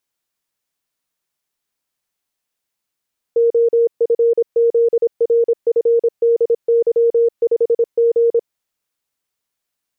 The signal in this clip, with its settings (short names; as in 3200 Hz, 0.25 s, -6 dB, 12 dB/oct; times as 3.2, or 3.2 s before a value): Morse "OFZRFDY5G" 26 wpm 466 Hz -10 dBFS